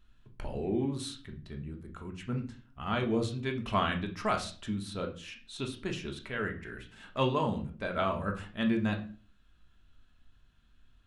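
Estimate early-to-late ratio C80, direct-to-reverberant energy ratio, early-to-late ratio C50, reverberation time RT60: 17.0 dB, 2.5 dB, 11.5 dB, 0.40 s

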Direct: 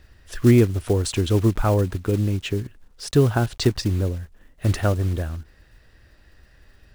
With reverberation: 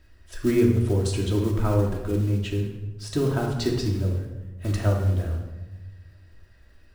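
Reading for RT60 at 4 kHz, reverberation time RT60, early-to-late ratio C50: 0.75 s, 1.2 s, 4.0 dB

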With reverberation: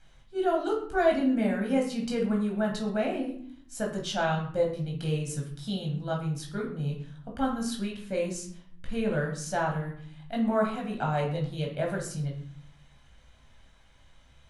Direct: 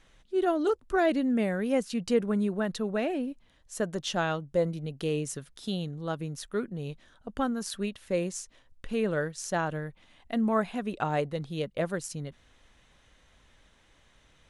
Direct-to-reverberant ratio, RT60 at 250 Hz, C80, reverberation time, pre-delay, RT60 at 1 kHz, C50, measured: -1.0 dB, 0.90 s, 10.0 dB, 0.55 s, 14 ms, 0.55 s, 6.0 dB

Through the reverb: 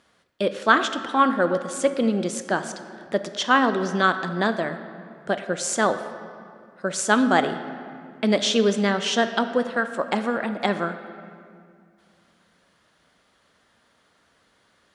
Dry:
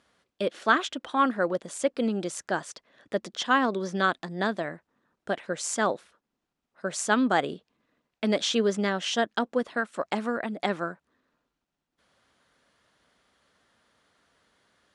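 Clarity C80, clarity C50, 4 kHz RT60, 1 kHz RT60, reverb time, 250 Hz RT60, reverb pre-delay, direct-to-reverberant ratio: 11.5 dB, 10.5 dB, 1.5 s, 2.2 s, 2.3 s, 2.9 s, 5 ms, 9.0 dB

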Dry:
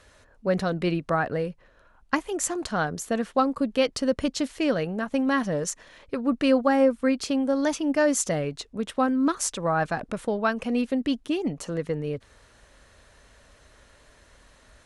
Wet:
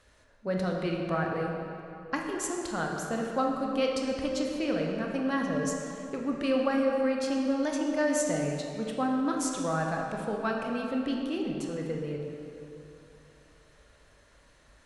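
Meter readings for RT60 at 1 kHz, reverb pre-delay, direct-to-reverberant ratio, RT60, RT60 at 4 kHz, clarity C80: 2.9 s, 16 ms, 0.0 dB, 2.9 s, 2.0 s, 3.0 dB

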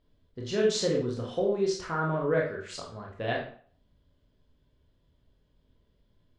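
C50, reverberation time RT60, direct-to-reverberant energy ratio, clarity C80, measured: 5.5 dB, 0.50 s, -2.0 dB, 10.5 dB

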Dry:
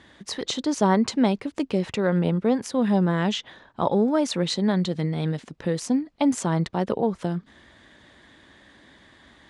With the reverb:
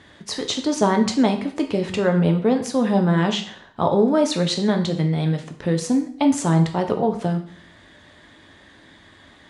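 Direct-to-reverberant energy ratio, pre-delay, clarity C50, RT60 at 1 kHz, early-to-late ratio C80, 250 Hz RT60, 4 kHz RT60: 4.5 dB, 5 ms, 10.5 dB, 0.50 s, 14.0 dB, 0.50 s, 0.50 s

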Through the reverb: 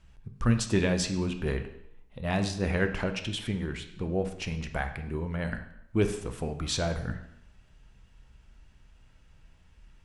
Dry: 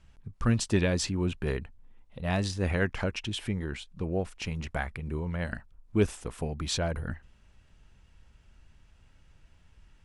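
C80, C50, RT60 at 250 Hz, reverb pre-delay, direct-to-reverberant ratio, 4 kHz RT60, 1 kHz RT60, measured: 12.5 dB, 10.0 dB, 0.70 s, 4 ms, 6.5 dB, 0.70 s, 0.75 s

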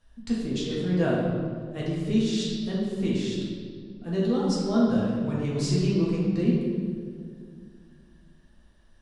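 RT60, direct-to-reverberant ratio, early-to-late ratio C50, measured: 2.1 s, -6.5 dB, -1.0 dB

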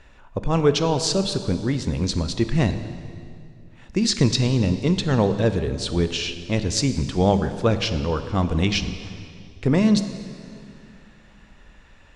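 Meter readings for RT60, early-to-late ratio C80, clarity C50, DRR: 2.4 s, 11.0 dB, 10.5 dB, 9.5 dB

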